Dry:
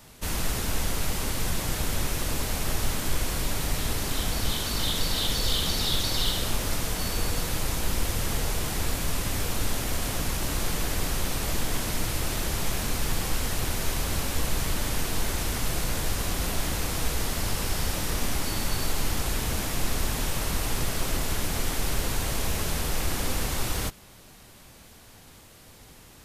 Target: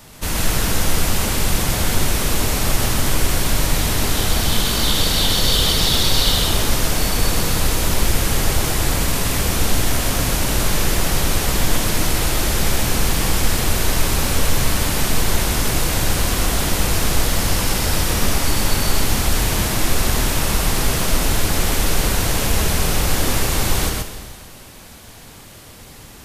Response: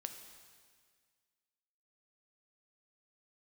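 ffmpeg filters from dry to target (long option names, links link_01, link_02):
-filter_complex "[0:a]asplit=2[link_01][link_02];[1:a]atrim=start_sample=2205,adelay=129[link_03];[link_02][link_03]afir=irnorm=-1:irlink=0,volume=1.5dB[link_04];[link_01][link_04]amix=inputs=2:normalize=0,volume=7.5dB"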